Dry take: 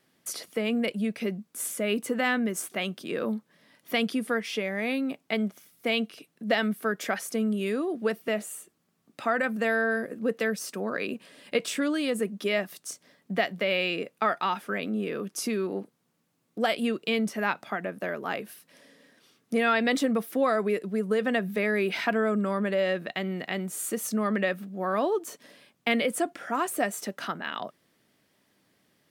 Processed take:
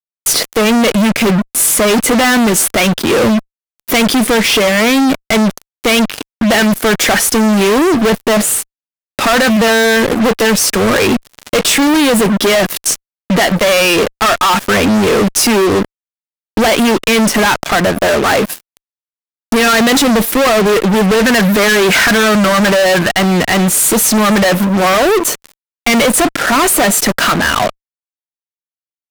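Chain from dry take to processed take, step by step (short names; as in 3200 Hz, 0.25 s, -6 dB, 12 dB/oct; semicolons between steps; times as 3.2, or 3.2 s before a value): 20.96–23.09 bell 1500 Hz +10.5 dB 0.44 oct; fuzz box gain 45 dB, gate -44 dBFS; gain +4.5 dB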